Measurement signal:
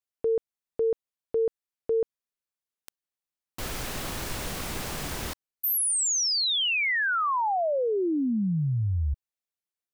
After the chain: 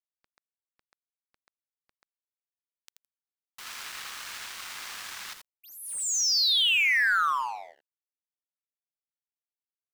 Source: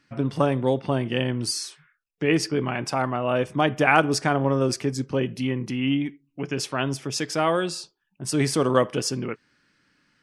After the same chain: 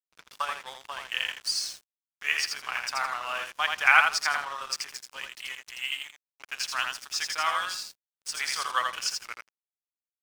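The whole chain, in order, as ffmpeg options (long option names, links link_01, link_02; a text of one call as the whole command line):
ffmpeg -i in.wav -filter_complex "[0:a]aecho=1:1:82|164|246:0.631|0.145|0.0334,acrossover=split=7200[link_01][link_02];[link_02]acompressor=threshold=-46dB:ratio=4:attack=1:release=60[link_03];[link_01][link_03]amix=inputs=2:normalize=0,highpass=frequency=1100:width=0.5412,highpass=frequency=1100:width=1.3066,aeval=exprs='sgn(val(0))*max(abs(val(0))-0.0075,0)':channel_layout=same,volume=2dB" out.wav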